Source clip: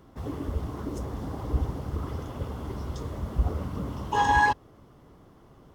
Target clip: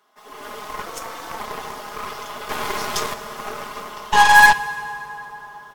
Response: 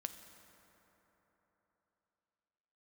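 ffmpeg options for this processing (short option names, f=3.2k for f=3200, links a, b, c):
-filter_complex "[0:a]highpass=990,aecho=1:1:4.8:0.92,dynaudnorm=f=250:g=3:m=13dB,asettb=1/sr,asplit=3[a][b][c];[a]atrim=end=0.864[d];[b]atrim=start=0.86:end=1.4,asetpts=PTS-STARTPTS,afade=t=in:d=0.004:c=qsin,afade=t=out:st=0.536:d=0.004:c=qsin,afreqshift=71[e];[c]atrim=start=1.396[f];[d][e]acrossfade=d=0.004:c1=hsin:c2=qsin[g];[g][f]acrossfade=d=0.004:c1=qsin:c2=hsin,asettb=1/sr,asplit=3[h][i][j];[h]atrim=end=2.494[k];[i]atrim=start=2.49:end=3.14,asetpts=PTS-STARTPTS,afade=t=in:d=0.004:c=qsin,afade=t=out:st=0.646:d=0.004:c=qsin,acontrast=65[l];[j]atrim=start=3.136[m];[k][l]acrossfade=d=0.004:c1=hsin:c2=qsin[n];[n][m]acrossfade=d=0.004:c1=qsin:c2=hsin,aeval=exprs='0.501*(cos(1*acos(clip(val(0)/0.501,-1,1)))-cos(1*PI/2))+0.0251*(cos(7*acos(clip(val(0)/0.501,-1,1)))-cos(7*PI/2))+0.0562*(cos(8*acos(clip(val(0)/0.501,-1,1)))-cos(8*PI/2))':c=same,asplit=2[o][p];[1:a]atrim=start_sample=2205,asetrate=33957,aresample=44100[q];[p][q]afir=irnorm=-1:irlink=0,volume=3.5dB[r];[o][r]amix=inputs=2:normalize=0,volume=-4.5dB"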